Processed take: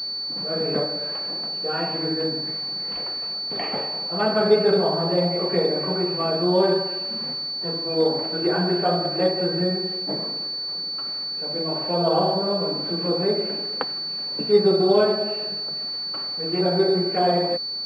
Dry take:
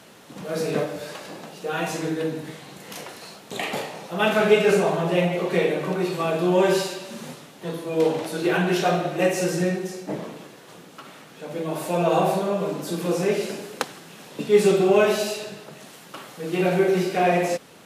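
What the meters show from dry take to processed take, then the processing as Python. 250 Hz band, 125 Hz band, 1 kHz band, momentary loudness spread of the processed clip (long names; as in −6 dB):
−0.5 dB, −1.0 dB, −0.5 dB, 8 LU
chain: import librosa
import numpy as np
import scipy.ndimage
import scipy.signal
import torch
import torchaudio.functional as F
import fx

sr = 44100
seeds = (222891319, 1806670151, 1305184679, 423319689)

y = fx.env_lowpass_down(x, sr, base_hz=1500.0, full_db=-18.0)
y = scipy.signal.sosfilt(scipy.signal.butter(2, 120.0, 'highpass', fs=sr, output='sos'), y)
y = fx.pwm(y, sr, carrier_hz=4500.0)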